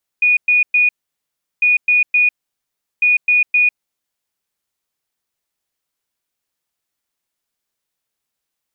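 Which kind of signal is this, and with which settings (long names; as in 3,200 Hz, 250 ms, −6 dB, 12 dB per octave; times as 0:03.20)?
beeps in groups sine 2,460 Hz, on 0.15 s, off 0.11 s, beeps 3, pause 0.73 s, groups 3, −9.5 dBFS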